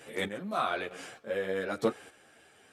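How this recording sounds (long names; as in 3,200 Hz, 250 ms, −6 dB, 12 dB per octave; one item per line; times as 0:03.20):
chopped level 1.1 Hz, depth 60%, duty 30%
a shimmering, thickened sound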